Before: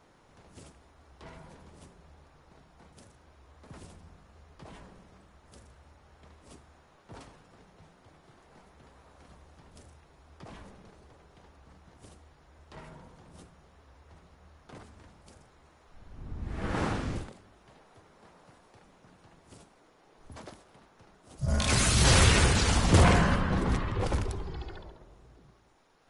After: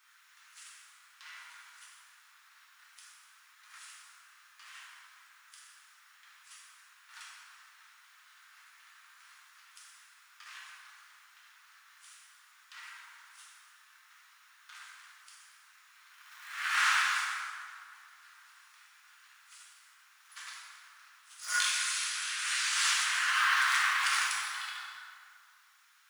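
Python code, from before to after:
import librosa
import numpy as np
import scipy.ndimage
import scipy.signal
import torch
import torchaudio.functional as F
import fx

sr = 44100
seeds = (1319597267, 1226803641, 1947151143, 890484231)

y = fx.law_mismatch(x, sr, coded='A')
y = scipy.signal.sosfilt(scipy.signal.butter(6, 1300.0, 'highpass', fs=sr, output='sos'), y)
y = fx.over_compress(y, sr, threshold_db=-39.0, ratio=-1.0)
y = fx.rev_plate(y, sr, seeds[0], rt60_s=2.2, hf_ratio=0.6, predelay_ms=0, drr_db=-5.0)
y = y * librosa.db_to_amplitude(3.5)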